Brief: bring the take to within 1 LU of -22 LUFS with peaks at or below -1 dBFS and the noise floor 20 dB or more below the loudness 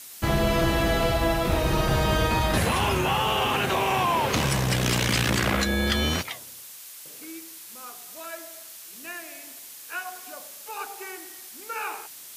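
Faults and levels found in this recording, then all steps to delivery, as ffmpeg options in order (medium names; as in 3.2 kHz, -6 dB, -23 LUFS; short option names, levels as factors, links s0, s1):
noise floor -43 dBFS; noise floor target -45 dBFS; loudness -24.5 LUFS; peak level -10.5 dBFS; loudness target -22.0 LUFS
-> -af "afftdn=nr=6:nf=-43"
-af "volume=1.33"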